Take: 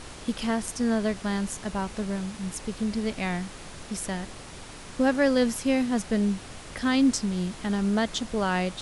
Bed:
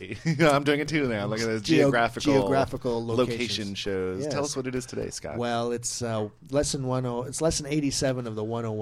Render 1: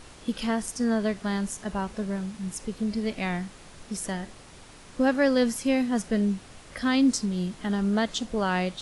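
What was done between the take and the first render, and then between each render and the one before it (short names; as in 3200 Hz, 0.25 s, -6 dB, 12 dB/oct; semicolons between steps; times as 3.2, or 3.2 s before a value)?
noise print and reduce 6 dB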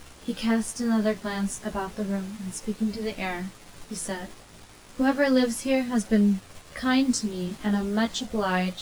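in parallel at -5 dB: bit-crush 7-bit; on the sum: chorus voices 2, 0.33 Hz, delay 14 ms, depth 5 ms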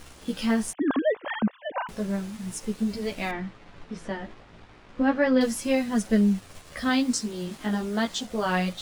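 0.73–1.89 sine-wave speech; 3.31–5.41 LPF 2800 Hz; 6.89–8.46 low shelf 150 Hz -7.5 dB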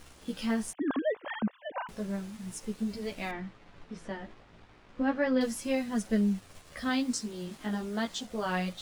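gain -6 dB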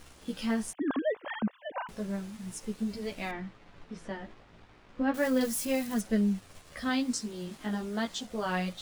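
5.14–6.01 switching spikes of -31.5 dBFS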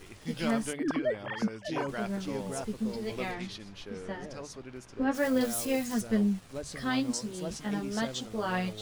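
add bed -14.5 dB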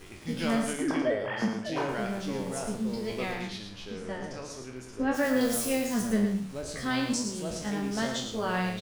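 spectral trails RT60 0.46 s; echo 0.11 s -7 dB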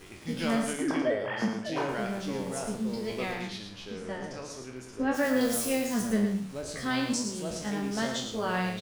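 low shelf 63 Hz -6.5 dB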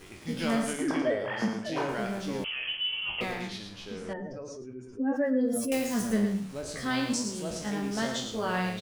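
2.44–3.21 inverted band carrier 3200 Hz; 4.13–5.72 spectral contrast raised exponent 1.9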